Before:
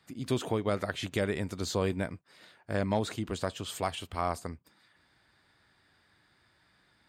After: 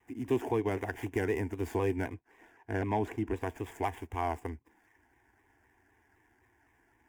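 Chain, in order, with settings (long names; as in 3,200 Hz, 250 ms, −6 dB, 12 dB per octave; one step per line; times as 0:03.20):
running median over 15 samples
0:02.14–0:03.42: high-shelf EQ 7,700 Hz −8.5 dB
in parallel at −2 dB: brickwall limiter −24 dBFS, peak gain reduction 7 dB
on the sum: phaser with its sweep stopped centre 850 Hz, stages 8
pitch modulation by a square or saw wave saw down 3.9 Hz, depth 100 cents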